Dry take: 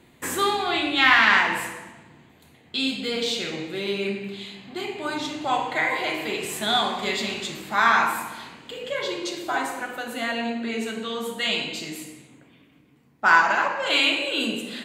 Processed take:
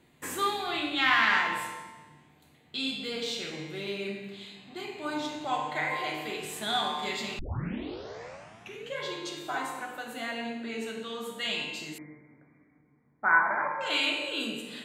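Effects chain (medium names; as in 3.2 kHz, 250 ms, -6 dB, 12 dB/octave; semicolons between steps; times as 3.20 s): feedback comb 150 Hz, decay 1.2 s, mix 80%; 7.39 s: tape start 1.59 s; 11.98–13.81 s: brick-wall FIR low-pass 2.4 kHz; trim +5 dB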